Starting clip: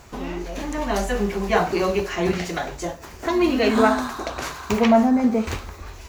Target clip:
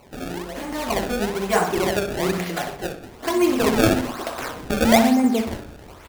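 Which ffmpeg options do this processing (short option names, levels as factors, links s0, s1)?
-filter_complex "[0:a]highpass=f=170:p=1,acrusher=samples=25:mix=1:aa=0.000001:lfo=1:lforange=40:lforate=1.1,asplit=2[s0][s1];[s1]adelay=62,lowpass=f=3400:p=1,volume=0.376,asplit=2[s2][s3];[s3]adelay=62,lowpass=f=3400:p=1,volume=0.47,asplit=2[s4][s5];[s5]adelay=62,lowpass=f=3400:p=1,volume=0.47,asplit=2[s6][s7];[s7]adelay=62,lowpass=f=3400:p=1,volume=0.47,asplit=2[s8][s9];[s9]adelay=62,lowpass=f=3400:p=1,volume=0.47[s10];[s0][s2][s4][s6][s8][s10]amix=inputs=6:normalize=0"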